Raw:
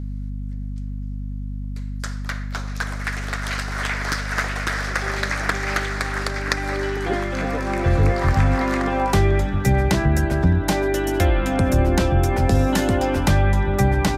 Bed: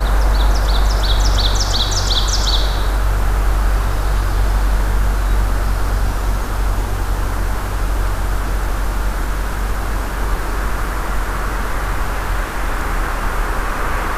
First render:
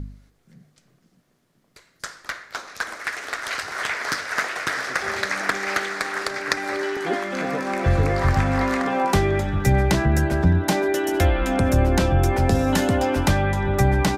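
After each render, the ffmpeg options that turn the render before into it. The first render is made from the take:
-af "bandreject=f=50:t=h:w=4,bandreject=f=100:t=h:w=4,bandreject=f=150:t=h:w=4,bandreject=f=200:t=h:w=4,bandreject=f=250:t=h:w=4,bandreject=f=300:t=h:w=4,bandreject=f=350:t=h:w=4"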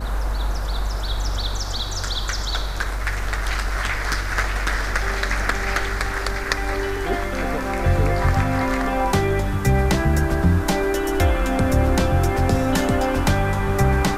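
-filter_complex "[1:a]volume=-9.5dB[a];[0:a][a]amix=inputs=2:normalize=0"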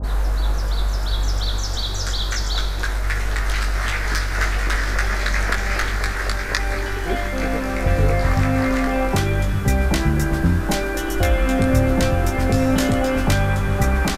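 -filter_complex "[0:a]asplit=2[a][b];[b]adelay=19,volume=-4.5dB[c];[a][c]amix=inputs=2:normalize=0,acrossover=split=920[d][e];[e]adelay=30[f];[d][f]amix=inputs=2:normalize=0"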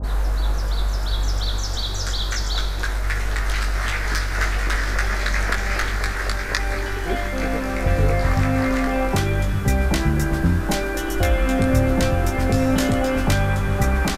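-af "volume=-1dB"

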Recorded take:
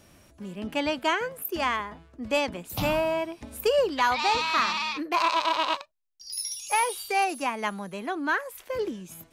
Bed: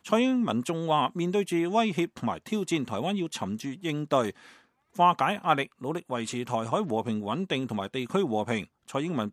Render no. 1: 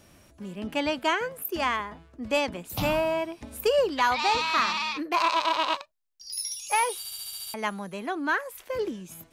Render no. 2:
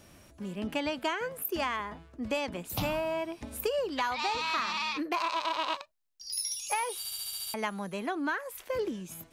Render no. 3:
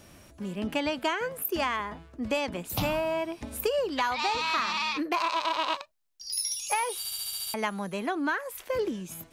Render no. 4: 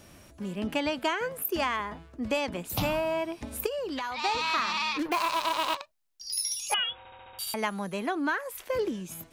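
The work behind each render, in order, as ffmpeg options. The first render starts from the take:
-filter_complex "[0:a]asplit=9[a][b][c][d][e][f][g][h][i];[a]atrim=end=7.052[j];[b]atrim=start=6.978:end=7.052[k];[c]atrim=start=6.978:end=7.052[l];[d]atrim=start=6.978:end=7.052[m];[e]atrim=start=6.978:end=7.052[n];[f]atrim=start=6.978:end=7.052[o];[g]atrim=start=6.978:end=7.052[p];[h]atrim=start=6.978:end=7.052[q];[i]atrim=start=7.538[r];[j][k]acrossfade=d=0.004:c1=hsin:c2=hsin[s];[s][l]acrossfade=d=0.004:c1=hsin:c2=hsin[t];[t][m]acrossfade=d=0.004:c1=hsin:c2=hsin[u];[u][n]acrossfade=d=0.004:c1=hsin:c2=hsin[v];[v][o]acrossfade=d=0.004:c1=hsin:c2=hsin[w];[w][p]acrossfade=d=0.004:c1=hsin:c2=hsin[x];[x][q]acrossfade=d=0.004:c1=hsin:c2=hsin[y];[y][r]acrossfade=d=0.004:c1=hsin:c2=hsin"
-af "acompressor=threshold=-28dB:ratio=6"
-af "volume=3dB"
-filter_complex "[0:a]asettb=1/sr,asplit=3[a][b][c];[a]atrim=end=3.664[d];[b]atrim=start=3.66:end=4.24,asetpts=PTS-STARTPTS,afade=t=in:d=0.004:c=qsin,afade=t=out:st=0.576:d=0.004:c=qsin,acompressor=threshold=-30dB:ratio=6:attack=3.2:release=140:knee=1:detection=peak[e];[c]atrim=start=4.236[f];[d][e]acrossfade=d=0.004:c1=hsin:c2=qsin[g];[g][f]acrossfade=d=0.004:c1=qsin:c2=hsin,asettb=1/sr,asplit=3[h][i][j];[h]atrim=end=4.994[k];[i]atrim=start=4.99:end=5.75,asetpts=PTS-STARTPTS,afade=t=in:d=0.004:c=qsin,afade=t=out:st=0.756:d=0.004:c=qsin,acrusher=bits=5:mix=0:aa=0.5[l];[j]atrim=start=5.746[m];[k][l]acrossfade=d=0.004:c1=hsin:c2=qsin[n];[n][m]acrossfade=d=0.004:c1=qsin:c2=hsin,asettb=1/sr,asplit=3[o][p][q];[o]atrim=end=6.744[r];[p]atrim=start=6.74:end=7.39,asetpts=PTS-STARTPTS,afade=t=in:d=0.004:c=qsin,afade=t=out:st=0.646:d=0.004:c=qsin,lowpass=f=3.2k:t=q:w=0.5098,lowpass=f=3.2k:t=q:w=0.6013,lowpass=f=3.2k:t=q:w=0.9,lowpass=f=3.2k:t=q:w=2.563,afreqshift=-3800[s];[q]atrim=start=7.386[t];[r][s]acrossfade=d=0.004:c1=hsin:c2=qsin[u];[u][t]acrossfade=d=0.004:c1=qsin:c2=hsin"

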